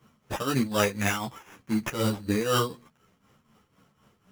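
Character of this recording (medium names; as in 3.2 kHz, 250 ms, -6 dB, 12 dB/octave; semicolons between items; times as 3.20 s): tremolo triangle 4 Hz, depth 80%; aliases and images of a low sample rate 4.3 kHz, jitter 0%; a shimmering, thickened sound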